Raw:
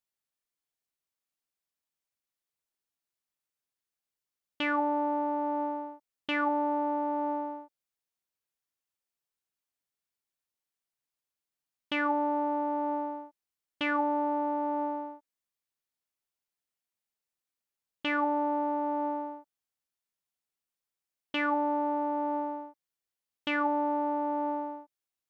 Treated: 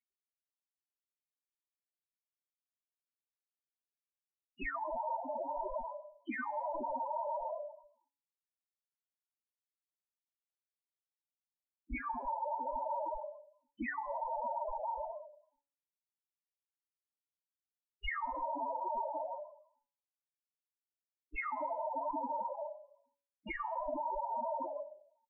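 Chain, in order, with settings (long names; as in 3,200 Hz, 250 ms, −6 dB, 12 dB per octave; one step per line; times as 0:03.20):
variable-slope delta modulation 64 kbit/s
tuned comb filter 530 Hz, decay 0.26 s, harmonics odd, mix 30%
downward compressor 4 to 1, threshold −37 dBFS, peak gain reduction 8.5 dB
repeating echo 104 ms, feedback 34%, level −9.5 dB
linear-prediction vocoder at 8 kHz whisper
octave-band graphic EQ 125/250/1,000/2,000 Hz −12/+11/+6/+11 dB
spectral peaks only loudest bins 4
hum removal 141.1 Hz, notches 31
brickwall limiter −35 dBFS, peak gain reduction 8.5 dB
comb filter 3.2 ms, depth 84%
level +1 dB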